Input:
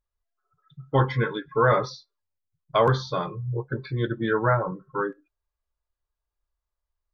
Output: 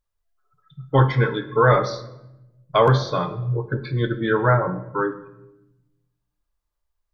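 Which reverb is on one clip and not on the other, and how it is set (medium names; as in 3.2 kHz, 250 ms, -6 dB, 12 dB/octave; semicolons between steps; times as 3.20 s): simulated room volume 360 m³, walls mixed, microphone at 0.4 m; trim +3.5 dB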